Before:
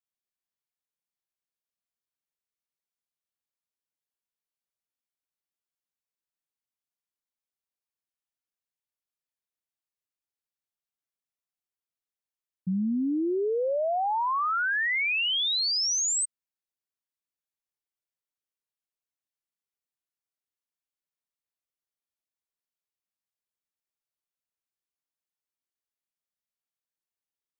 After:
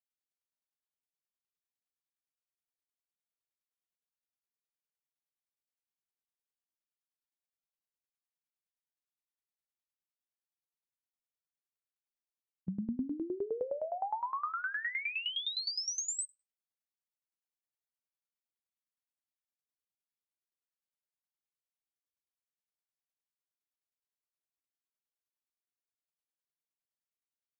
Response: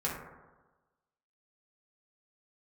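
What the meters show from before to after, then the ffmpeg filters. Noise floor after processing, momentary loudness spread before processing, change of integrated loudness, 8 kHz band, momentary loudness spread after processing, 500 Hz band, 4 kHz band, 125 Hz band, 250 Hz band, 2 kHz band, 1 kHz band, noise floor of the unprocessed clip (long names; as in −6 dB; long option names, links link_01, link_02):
below −85 dBFS, 5 LU, −10.0 dB, −10.0 dB, 5 LU, −10.0 dB, −10.5 dB, −8.5 dB, −10.0 dB, −10.5 dB, −10.0 dB, below −85 dBFS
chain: -filter_complex "[0:a]asplit=2[link_01][link_02];[1:a]atrim=start_sample=2205,afade=type=out:start_time=0.31:duration=0.01,atrim=end_sample=14112[link_03];[link_02][link_03]afir=irnorm=-1:irlink=0,volume=-17dB[link_04];[link_01][link_04]amix=inputs=2:normalize=0,aeval=exprs='val(0)*pow(10,-18*if(lt(mod(9.7*n/s,1),2*abs(9.7)/1000),1-mod(9.7*n/s,1)/(2*abs(9.7)/1000),(mod(9.7*n/s,1)-2*abs(9.7)/1000)/(1-2*abs(9.7)/1000))/20)':channel_layout=same,volume=-5dB"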